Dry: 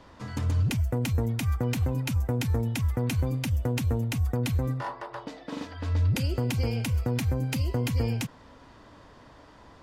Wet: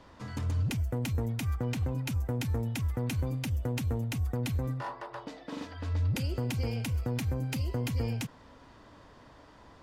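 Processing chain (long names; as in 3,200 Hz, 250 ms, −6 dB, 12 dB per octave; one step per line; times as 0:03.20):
0:01.55–0:02.06: high-shelf EQ 11,000 Hz −9 dB
in parallel at −8.5 dB: hard clipping −34 dBFS, distortion −5 dB
on the sum: level −5.5 dB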